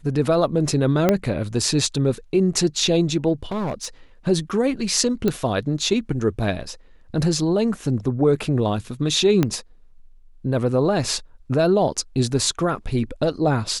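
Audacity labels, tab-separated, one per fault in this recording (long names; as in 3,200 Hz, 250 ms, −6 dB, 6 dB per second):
1.090000	1.090000	click −4 dBFS
3.430000	3.870000	clipping −22 dBFS
5.280000	5.280000	click −9 dBFS
9.430000	9.430000	click −6 dBFS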